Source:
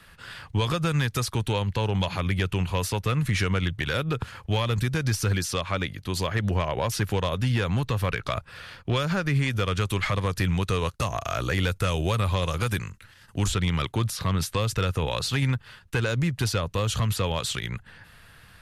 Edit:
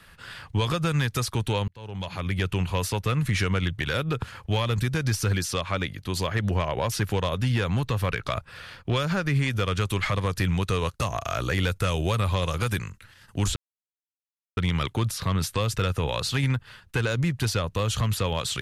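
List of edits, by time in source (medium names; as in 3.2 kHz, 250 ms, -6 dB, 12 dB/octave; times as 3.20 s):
1.68–2.47 s: fade in
13.56 s: insert silence 1.01 s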